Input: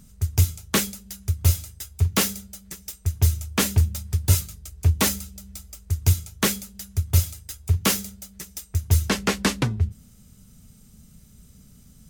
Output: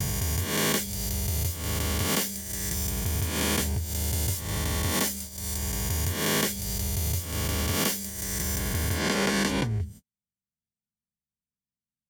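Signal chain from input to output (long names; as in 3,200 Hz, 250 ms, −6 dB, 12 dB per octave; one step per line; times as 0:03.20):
peak hold with a rise ahead of every peak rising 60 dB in 1.87 s
noise gate −33 dBFS, range −51 dB
downward compressor 6 to 1, threshold −25 dBFS, peak gain reduction 14 dB
notch comb filter 1,300 Hz
level +3.5 dB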